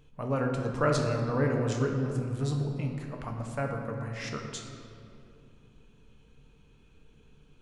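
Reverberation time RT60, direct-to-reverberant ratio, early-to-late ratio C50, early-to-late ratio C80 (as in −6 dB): 2.6 s, 1.5 dB, 4.0 dB, 5.0 dB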